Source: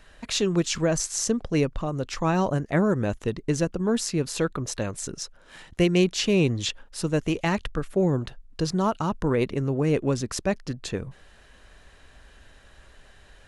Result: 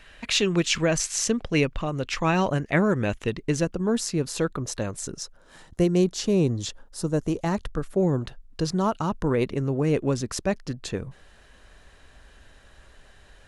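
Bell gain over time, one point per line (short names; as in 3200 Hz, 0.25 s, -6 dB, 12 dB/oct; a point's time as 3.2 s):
bell 2500 Hz 1.2 oct
3.2 s +8.5 dB
3.91 s -2.5 dB
5.01 s -2.5 dB
5.86 s -12 dB
7.45 s -12 dB
8.11 s -1 dB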